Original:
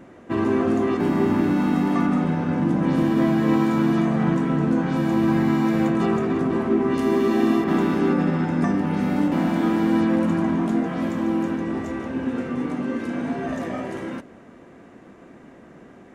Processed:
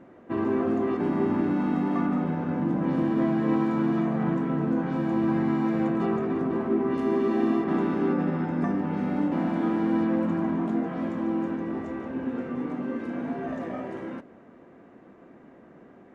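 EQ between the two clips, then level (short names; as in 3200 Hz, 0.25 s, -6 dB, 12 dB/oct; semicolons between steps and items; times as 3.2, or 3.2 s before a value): LPF 1400 Hz 6 dB/oct; low shelf 130 Hz -8 dB; -3.0 dB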